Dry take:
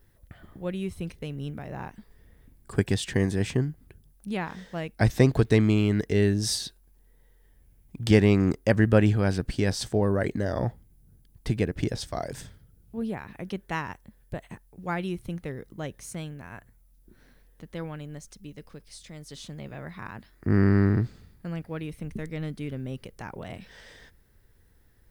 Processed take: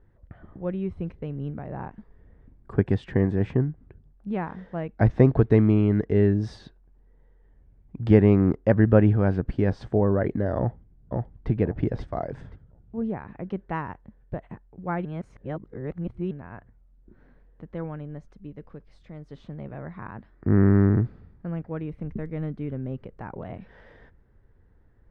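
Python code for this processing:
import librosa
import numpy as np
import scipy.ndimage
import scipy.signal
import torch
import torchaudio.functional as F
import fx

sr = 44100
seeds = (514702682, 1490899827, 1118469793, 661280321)

y = fx.echo_throw(x, sr, start_s=10.58, length_s=0.91, ms=530, feedback_pct=25, wet_db=-2.5)
y = fx.edit(y, sr, fx.reverse_span(start_s=15.05, length_s=1.26), tone=tone)
y = scipy.signal.sosfilt(scipy.signal.butter(2, 1300.0, 'lowpass', fs=sr, output='sos'), y)
y = y * librosa.db_to_amplitude(2.5)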